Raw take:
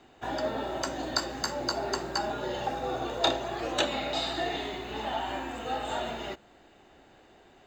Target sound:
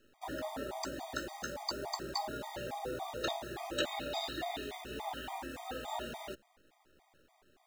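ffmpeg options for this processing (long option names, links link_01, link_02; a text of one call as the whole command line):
ffmpeg -i in.wav -af "acrusher=bits=8:dc=4:mix=0:aa=0.000001,afftfilt=real='re*gt(sin(2*PI*3.5*pts/sr)*(1-2*mod(floor(b*sr/1024/630),2)),0)':imag='im*gt(sin(2*PI*3.5*pts/sr)*(1-2*mod(floor(b*sr/1024/630),2)),0)':win_size=1024:overlap=0.75,volume=-4.5dB" out.wav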